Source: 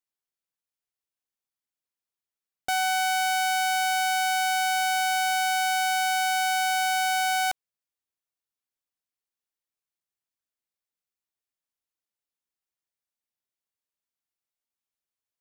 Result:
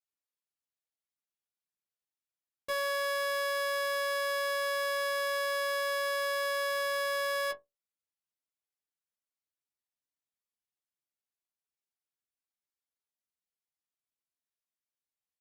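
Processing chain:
harmonic generator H 2 −23 dB, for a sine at −19.5 dBFS
stiff-string resonator 90 Hz, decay 0.22 s, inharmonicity 0.002
pitch shifter −5 semitones

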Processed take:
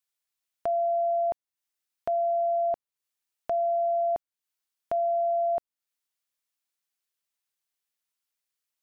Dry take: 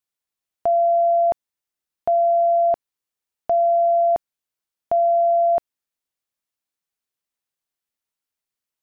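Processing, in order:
one half of a high-frequency compander encoder only
level −8.5 dB

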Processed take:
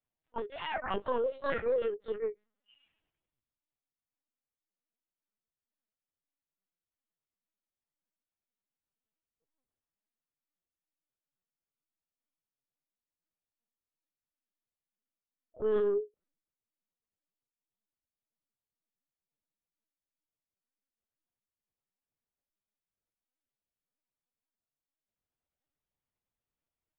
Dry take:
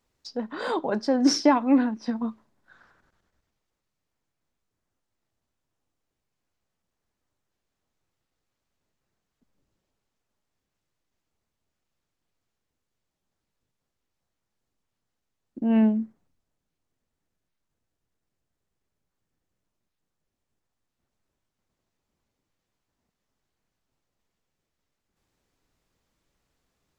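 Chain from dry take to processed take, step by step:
phase-vocoder pitch shift without resampling +11 semitones
noise reduction from a noise print of the clip's start 11 dB
brickwall limiter −20 dBFS, peak gain reduction 10.5 dB
linear-prediction vocoder at 8 kHz pitch kept
level −3 dB

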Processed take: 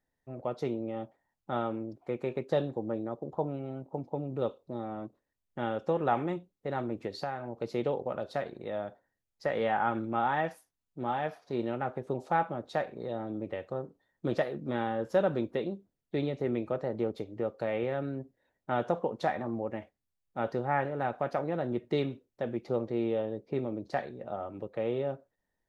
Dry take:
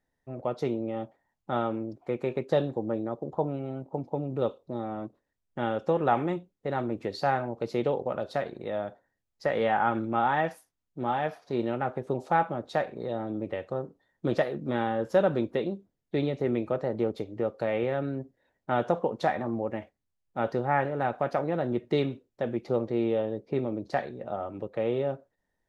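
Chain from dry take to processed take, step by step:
0:07.06–0:07.62: downward compressor 6 to 1, threshold −28 dBFS, peak gain reduction 7.5 dB
level −3.5 dB

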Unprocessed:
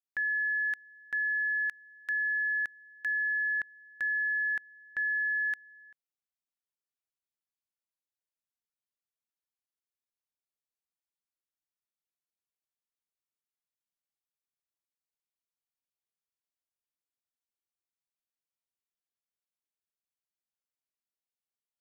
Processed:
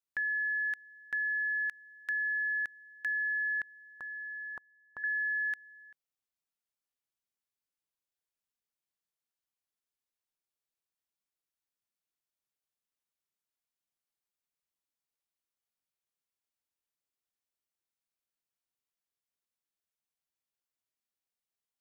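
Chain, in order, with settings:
0:04.00–0:05.04: high shelf with overshoot 1,500 Hz −11.5 dB, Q 3
downward compressor, threshold −30 dBFS, peak gain reduction 2 dB

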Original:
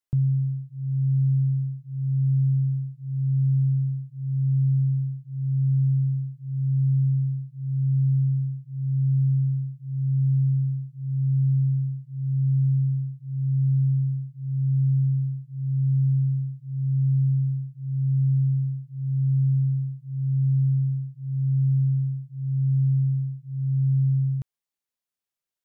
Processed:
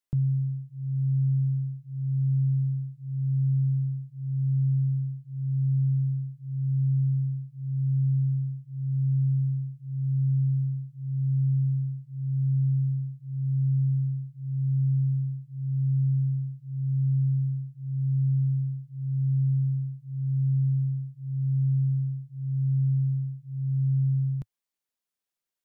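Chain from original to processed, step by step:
parametric band 110 Hz −9 dB 0.39 octaves

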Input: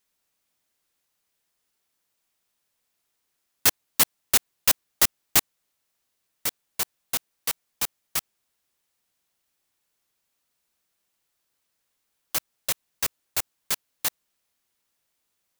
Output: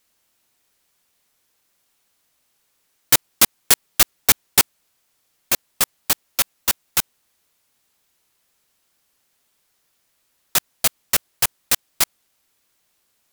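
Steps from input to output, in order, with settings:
sine wavefolder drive 8 dB, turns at −3 dBFS
speed change +17%
level −2 dB

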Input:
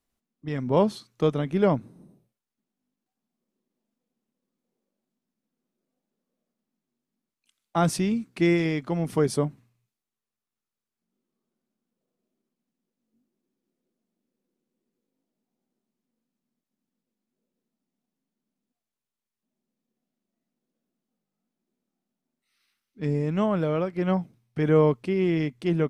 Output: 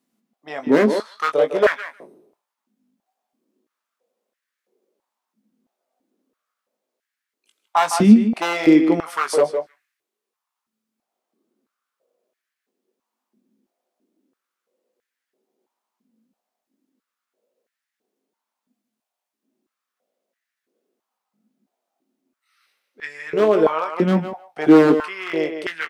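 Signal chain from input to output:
far-end echo of a speakerphone 160 ms, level −7 dB
wave folding −16.5 dBFS
double-tracking delay 19 ms −8 dB
on a send: single-tap delay 150 ms −20 dB
on the sum: high-pass on a step sequencer 3 Hz 220–1,700 Hz
level +4.5 dB

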